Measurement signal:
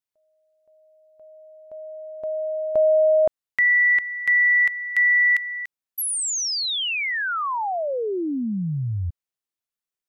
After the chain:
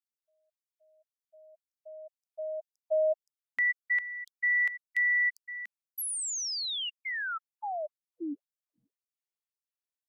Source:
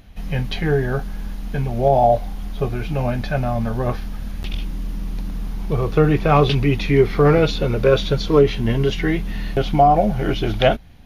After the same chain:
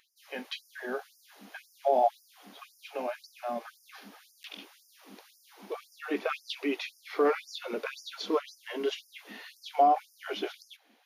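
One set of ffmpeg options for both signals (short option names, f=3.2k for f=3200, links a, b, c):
-filter_complex "[0:a]acrossover=split=220[a][b];[a]alimiter=limit=-22.5dB:level=0:latency=1[c];[c][b]amix=inputs=2:normalize=0,afftfilt=real='re*gte(b*sr/1024,200*pow(4900/200,0.5+0.5*sin(2*PI*1.9*pts/sr)))':imag='im*gte(b*sr/1024,200*pow(4900/200,0.5+0.5*sin(2*PI*1.9*pts/sr)))':win_size=1024:overlap=0.75,volume=-8.5dB"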